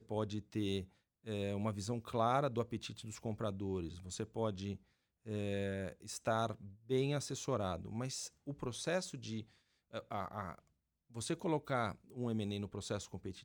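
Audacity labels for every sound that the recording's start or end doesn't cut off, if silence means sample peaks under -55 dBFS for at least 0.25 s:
1.250000	4.770000	sound
5.260000	9.430000	sound
9.930000	10.590000	sound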